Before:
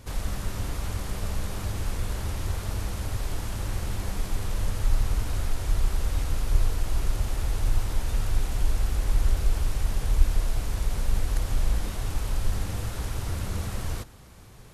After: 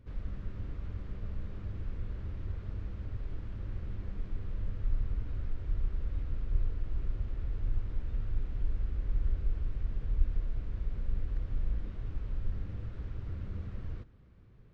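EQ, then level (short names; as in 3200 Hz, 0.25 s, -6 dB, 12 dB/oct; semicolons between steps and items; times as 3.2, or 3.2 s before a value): tape spacing loss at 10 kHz 44 dB; bell 810 Hz -10.5 dB 1 oct; -7.5 dB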